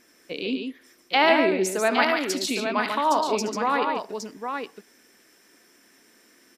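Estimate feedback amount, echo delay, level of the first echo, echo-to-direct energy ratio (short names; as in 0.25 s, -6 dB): no steady repeat, 74 ms, -13.0 dB, -2.5 dB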